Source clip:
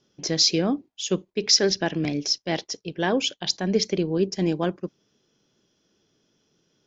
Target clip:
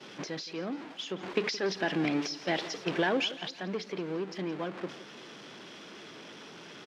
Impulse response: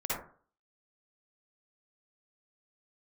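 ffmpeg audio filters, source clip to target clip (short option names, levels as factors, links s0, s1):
-filter_complex "[0:a]aeval=exprs='val(0)+0.5*0.0299*sgn(val(0))':c=same,agate=range=0.0224:threshold=0.0398:ratio=3:detection=peak,aeval=exprs='0.531*sin(PI/2*1.78*val(0)/0.531)':c=same,tiltshelf=f=920:g=-4,acompressor=threshold=0.0224:ratio=6,lowpass=2700,asettb=1/sr,asplit=3[s0][s1][s2];[s0]atrim=end=1.234[s3];[s1]atrim=start=1.23:end=3.32,asetpts=PTS-STARTPTS,afade=t=in:d=0.004:c=qsin,afade=t=out:st=2.086:d=0.004:c=qsin,acontrast=61[s4];[s2]atrim=start=3.316[s5];[s3][s4]acrossfade=d=0.004:c1=hsin:c2=qsin[s6];[s6][s5]acrossfade=d=0.004:c1=qsin:c2=hsin,highpass=180,aecho=1:1:170|340|510|680:0.141|0.0622|0.0273|0.012"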